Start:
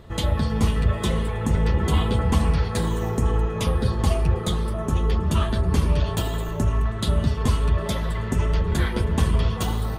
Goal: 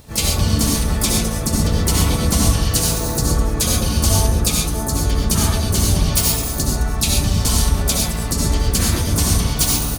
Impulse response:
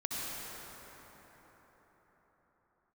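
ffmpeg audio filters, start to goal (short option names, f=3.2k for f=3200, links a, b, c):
-filter_complex "[0:a]aexciter=amount=7.4:drive=4.1:freq=4.1k,asplit=3[a][b][c];[b]asetrate=29433,aresample=44100,atempo=1.49831,volume=-3dB[d];[c]asetrate=58866,aresample=44100,atempo=0.749154,volume=-5dB[e];[a][d][e]amix=inputs=3:normalize=0[f];[1:a]atrim=start_sample=2205,afade=t=out:st=0.19:d=0.01,atrim=end_sample=8820[g];[f][g]afir=irnorm=-1:irlink=0"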